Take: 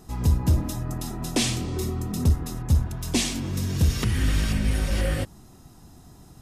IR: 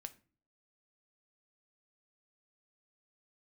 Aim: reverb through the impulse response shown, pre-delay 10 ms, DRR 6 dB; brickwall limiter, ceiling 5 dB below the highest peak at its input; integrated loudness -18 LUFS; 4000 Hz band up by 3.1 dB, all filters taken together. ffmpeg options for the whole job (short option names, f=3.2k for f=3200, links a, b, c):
-filter_complex "[0:a]equalizer=f=4k:t=o:g=4,alimiter=limit=-16.5dB:level=0:latency=1,asplit=2[a][b];[1:a]atrim=start_sample=2205,adelay=10[c];[b][c]afir=irnorm=-1:irlink=0,volume=-1dB[d];[a][d]amix=inputs=2:normalize=0,volume=8.5dB"